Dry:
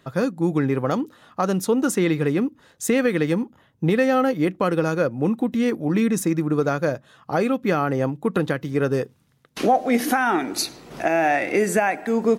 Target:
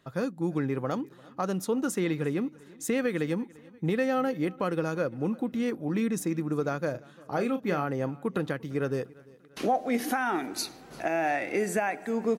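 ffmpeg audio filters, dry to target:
-filter_complex "[0:a]asettb=1/sr,asplit=3[s0][s1][s2];[s0]atrim=end=6.914[s3];[s1]atrim=start=6.91:end=7.84,asetpts=PTS-STARTPTS,afade=t=in:d=0.004:c=qsin,afade=t=out:st=0.926:d=0.004:c=qsin,asplit=2[s4][s5];[s5]adelay=34,volume=0.355[s6];[s4][s6]amix=inputs=2:normalize=0,atrim=end_sample=41013[s7];[s2]atrim=start=7.836[s8];[s3][s7]acrossfade=d=0.004:c1=hsin:c2=qsin[s9];[s9][s8]acrossfade=d=0.004:c1=qsin:c2=hsin,aecho=1:1:345|690|1035:0.0668|0.0341|0.0174,volume=0.398"

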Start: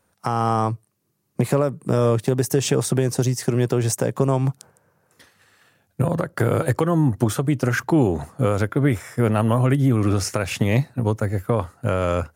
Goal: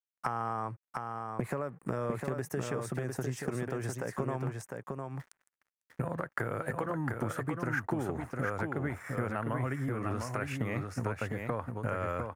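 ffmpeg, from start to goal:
-filter_complex "[0:a]aeval=exprs='sgn(val(0))*max(abs(val(0))-0.00355,0)':c=same,tiltshelf=f=970:g=-4.5,acompressor=threshold=0.0282:ratio=10,highshelf=f=2500:t=q:w=1.5:g=-11,asplit=2[s0][s1];[s1]aecho=0:1:704:0.596[s2];[s0][s2]amix=inputs=2:normalize=0"

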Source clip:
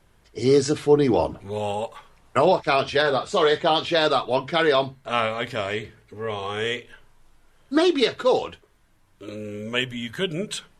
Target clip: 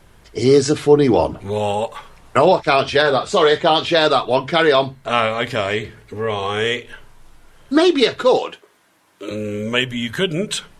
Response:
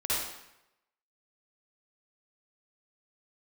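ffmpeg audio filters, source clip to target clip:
-filter_complex "[0:a]asettb=1/sr,asplit=3[s0][s1][s2];[s0]atrim=end=8.374[s3];[s1]atrim=start=8.37:end=9.31,asetpts=PTS-STARTPTS,afade=t=in:d=0.004:c=qsin,afade=t=out:st=0.936:d=0.004:c=qsin,highpass=290[s4];[s2]atrim=start=9.306[s5];[s3][s4]acrossfade=d=0.004:c1=hsin:c2=qsin[s6];[s6][s5]acrossfade=d=0.004:c1=qsin:c2=hsin,asplit=2[s7][s8];[s8]acompressor=threshold=0.0224:ratio=6,volume=1.06[s9];[s7][s9]amix=inputs=2:normalize=0,volume=1.58"

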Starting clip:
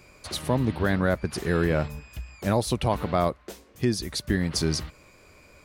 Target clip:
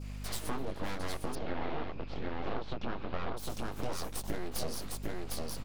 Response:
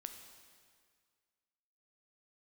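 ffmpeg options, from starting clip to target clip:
-filter_complex "[0:a]flanger=delay=16.5:depth=7.6:speed=0.44,aecho=1:1:755:0.631,aeval=exprs='abs(val(0))':c=same,equalizer=f=98:w=1.1:g=-6.5,asettb=1/sr,asplit=3[s0][s1][s2];[s0]atrim=end=1.354[s3];[s1]atrim=start=1.35:end=3.37,asetpts=PTS-STARTPTS,afade=t=in:d=0.004:c=qsin,afade=t=out:st=2.016:d=0.004:c=qsin,lowpass=f=3900:w=0.5412,lowpass=f=3900:w=1.3066[s4];[s2]atrim=start=3.366[s5];[s3][s4]acrossfade=d=0.004:c1=hsin:c2=qsin[s6];[s6][s5]acrossfade=d=0.004:c1=qsin:c2=hsin,adynamicequalizer=threshold=0.00112:dfrequency=1900:dqfactor=1.2:tfrequency=1900:tqfactor=1.2:attack=5:release=100:ratio=0.375:range=3:mode=cutabove:tftype=bell,aeval=exprs='val(0)+0.00631*(sin(2*PI*50*n/s)+sin(2*PI*2*50*n/s)/2+sin(2*PI*3*50*n/s)/3+sin(2*PI*4*50*n/s)/4+sin(2*PI*5*50*n/s)/5)':c=same,acompressor=threshold=0.0141:ratio=3,volume=1.58"

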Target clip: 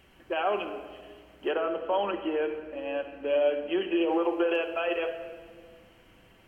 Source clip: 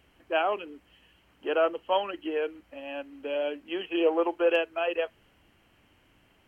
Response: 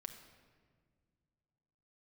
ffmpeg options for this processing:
-filter_complex "[0:a]asettb=1/sr,asplit=3[s0][s1][s2];[s0]atrim=end=1.514[s3];[s1]atrim=start=1.51:end=4.01,asetpts=PTS-STARTPTS,afade=t=in:d=0.004:c=qsin,afade=t=out:st=2.496:d=0.004:c=qsin,highshelf=f=3100:g=-10[s4];[s2]atrim=start=4.006[s5];[s3][s4]acrossfade=d=0.004:c1=hsin:c2=qsin[s6];[s6][s5]acrossfade=d=0.004:c1=qsin:c2=hsin,alimiter=limit=0.0631:level=0:latency=1:release=40[s7];[1:a]atrim=start_sample=2205[s8];[s7][s8]afir=irnorm=-1:irlink=0,volume=2.82"

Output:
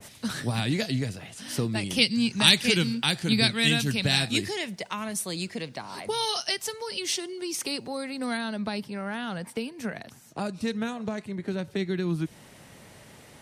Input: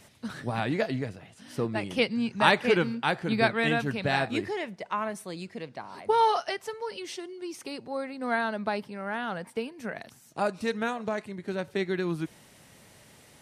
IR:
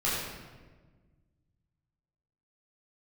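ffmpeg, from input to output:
-filter_complex "[0:a]asetnsamples=n=441:p=0,asendcmd='8.37 highshelf g 2;9.98 highshelf g -4.5',highshelf=f=2900:g=9,acrossover=split=260|3000[s0][s1][s2];[s1]acompressor=threshold=0.00891:ratio=4[s3];[s0][s3][s2]amix=inputs=3:normalize=0,adynamicequalizer=threshold=0.0178:dfrequency=1700:dqfactor=0.7:tfrequency=1700:tqfactor=0.7:attack=5:release=100:ratio=0.375:range=2:mode=boostabove:tftype=highshelf,volume=2"

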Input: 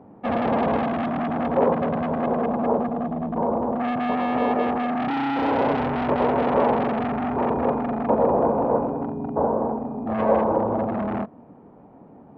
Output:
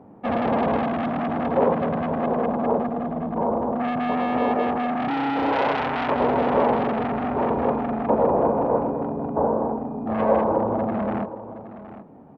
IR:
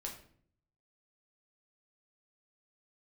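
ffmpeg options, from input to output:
-filter_complex "[0:a]asettb=1/sr,asplit=3[s0][s1][s2];[s0]atrim=end=5.524[s3];[s1]atrim=start=5.52:end=6.16,asetpts=PTS-STARTPTS,afade=t=in:d=0.004:c=qsin,afade=t=out:st=0.636:d=0.004:c=qsin,tiltshelf=f=690:g=-6.5[s4];[s2]atrim=start=6.156[s5];[s3][s4]acrossfade=d=0.004:c1=hsin:c2=qsin[s6];[s6][s5]acrossfade=d=0.004:c1=qsin:c2=hsin,asplit=2[s7][s8];[s8]aecho=0:1:769:0.2[s9];[s7][s9]amix=inputs=2:normalize=0"

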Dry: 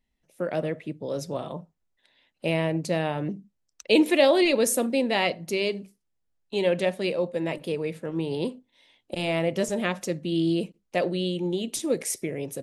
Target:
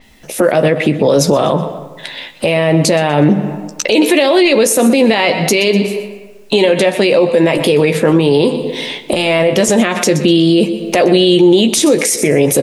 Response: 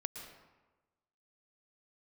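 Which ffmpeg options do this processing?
-filter_complex "[0:a]asplit=2[s0][s1];[1:a]atrim=start_sample=2205[s2];[s1][s2]afir=irnorm=-1:irlink=0,volume=0.15[s3];[s0][s3]amix=inputs=2:normalize=0,acompressor=threshold=0.0178:ratio=16,lowshelf=f=160:g=-8.5,asplit=2[s4][s5];[s5]adelay=14,volume=0.376[s6];[s4][s6]amix=inputs=2:normalize=0,aecho=1:1:123|246|369:0.133|0.04|0.012,alimiter=level_in=63.1:limit=0.891:release=50:level=0:latency=1,adynamicequalizer=threshold=0.0398:dfrequency=7000:dqfactor=0.7:tfrequency=7000:tqfactor=0.7:attack=5:release=100:ratio=0.375:range=2:mode=cutabove:tftype=highshelf,volume=0.891"

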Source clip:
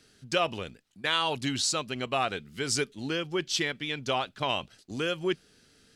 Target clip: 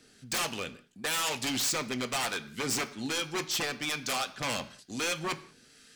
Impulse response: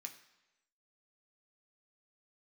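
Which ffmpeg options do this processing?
-filter_complex "[0:a]acrossover=split=940[s0][s1];[s0]aeval=exprs='val(0)*(1-0.5/2+0.5/2*cos(2*PI*1.1*n/s))':c=same[s2];[s1]aeval=exprs='val(0)*(1-0.5/2-0.5/2*cos(2*PI*1.1*n/s))':c=same[s3];[s2][s3]amix=inputs=2:normalize=0,aeval=exprs='0.0299*(abs(mod(val(0)/0.0299+3,4)-2)-1)':c=same,asplit=2[s4][s5];[1:a]atrim=start_sample=2205,afade=t=out:st=0.26:d=0.01,atrim=end_sample=11907[s6];[s5][s6]afir=irnorm=-1:irlink=0,volume=2[s7];[s4][s7]amix=inputs=2:normalize=0"

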